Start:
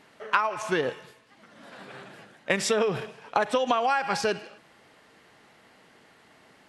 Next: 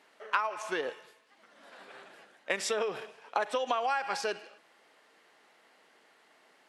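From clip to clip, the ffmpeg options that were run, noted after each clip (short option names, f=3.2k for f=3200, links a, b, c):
-af "highpass=370,volume=-5.5dB"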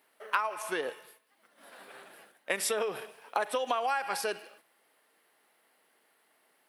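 -af "aexciter=amount=4.4:drive=8.5:freq=9.3k,agate=range=-7dB:threshold=-58dB:ratio=16:detection=peak"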